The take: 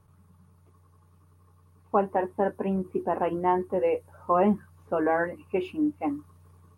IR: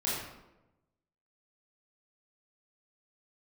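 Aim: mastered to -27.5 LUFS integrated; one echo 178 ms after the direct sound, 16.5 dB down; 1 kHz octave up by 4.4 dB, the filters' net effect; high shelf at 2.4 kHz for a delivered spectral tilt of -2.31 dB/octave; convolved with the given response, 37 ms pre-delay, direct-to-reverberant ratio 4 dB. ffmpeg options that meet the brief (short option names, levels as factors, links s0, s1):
-filter_complex "[0:a]equalizer=f=1000:t=o:g=4.5,highshelf=f=2400:g=7,aecho=1:1:178:0.15,asplit=2[s0][s1];[1:a]atrim=start_sample=2205,adelay=37[s2];[s1][s2]afir=irnorm=-1:irlink=0,volume=0.282[s3];[s0][s3]amix=inputs=2:normalize=0,volume=0.631"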